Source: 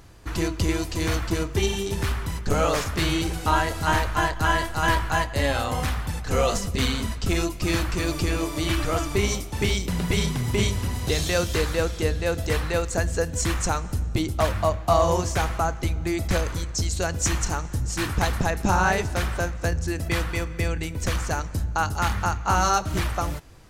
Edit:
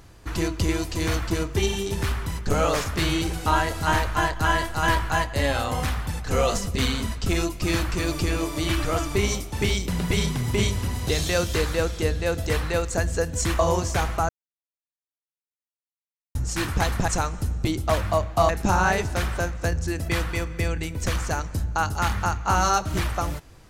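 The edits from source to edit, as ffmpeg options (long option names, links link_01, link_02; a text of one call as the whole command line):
ffmpeg -i in.wav -filter_complex "[0:a]asplit=6[link_01][link_02][link_03][link_04][link_05][link_06];[link_01]atrim=end=13.592[link_07];[link_02]atrim=start=14.998:end=15.7,asetpts=PTS-STARTPTS,afade=type=out:start_time=0.698:duration=0.004:curve=hsin[link_08];[link_03]atrim=start=15.7:end=17.76,asetpts=PTS-STARTPTS,volume=0[link_09];[link_04]atrim=start=17.76:end=18.492,asetpts=PTS-STARTPTS,afade=type=in:duration=0.004:curve=hsin[link_10];[link_05]atrim=start=13.588:end=15.002[link_11];[link_06]atrim=start=18.488[link_12];[link_08][link_09][link_10]concat=n=3:v=0:a=1[link_13];[link_07][link_13]acrossfade=duration=0.004:curve1=hsin:curve2=hsin[link_14];[link_14][link_11]acrossfade=duration=0.004:curve1=hsin:curve2=hsin[link_15];[link_15][link_12]acrossfade=duration=0.004:curve1=hsin:curve2=hsin" out.wav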